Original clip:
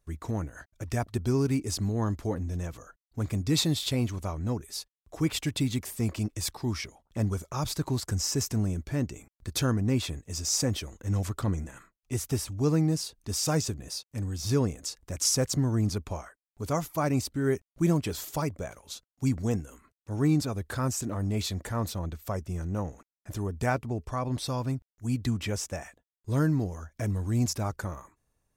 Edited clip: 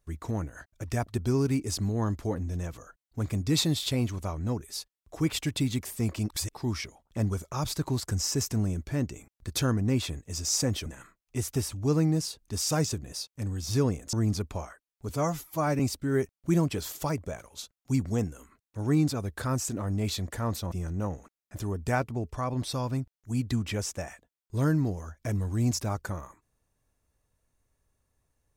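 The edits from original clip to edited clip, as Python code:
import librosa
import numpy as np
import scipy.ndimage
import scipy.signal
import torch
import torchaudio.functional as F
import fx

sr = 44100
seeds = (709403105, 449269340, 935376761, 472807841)

y = fx.edit(x, sr, fx.reverse_span(start_s=6.3, length_s=0.25),
    fx.cut(start_s=10.86, length_s=0.76),
    fx.cut(start_s=14.89, length_s=0.8),
    fx.stretch_span(start_s=16.65, length_s=0.47, factor=1.5),
    fx.cut(start_s=22.04, length_s=0.42), tone=tone)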